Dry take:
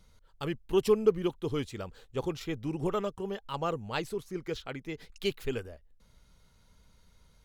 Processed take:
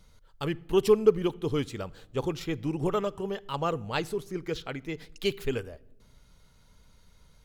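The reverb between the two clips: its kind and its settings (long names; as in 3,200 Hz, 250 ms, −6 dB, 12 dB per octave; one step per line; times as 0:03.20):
rectangular room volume 3,400 cubic metres, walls furnished, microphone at 0.35 metres
level +3 dB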